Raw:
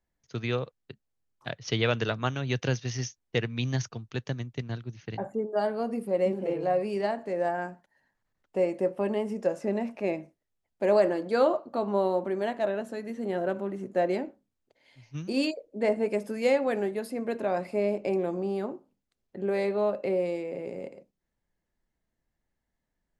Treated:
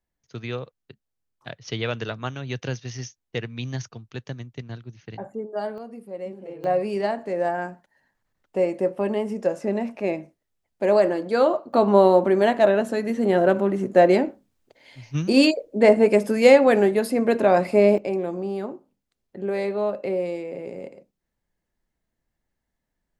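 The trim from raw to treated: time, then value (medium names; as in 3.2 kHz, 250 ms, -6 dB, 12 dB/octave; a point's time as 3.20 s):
-1.5 dB
from 5.78 s -8 dB
from 6.64 s +4 dB
from 11.73 s +11 dB
from 17.98 s +2 dB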